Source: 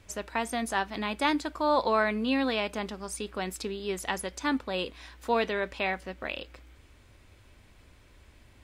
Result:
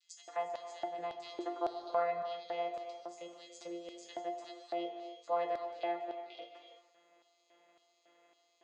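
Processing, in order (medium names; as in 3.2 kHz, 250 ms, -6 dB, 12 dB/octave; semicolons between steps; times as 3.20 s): vocoder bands 16, saw 172 Hz; chord resonator A#3 major, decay 0.27 s; LFO high-pass square 1.8 Hz 530–4300 Hz; gated-style reverb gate 360 ms flat, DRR 7 dB; tape noise reduction on one side only encoder only; trim +10 dB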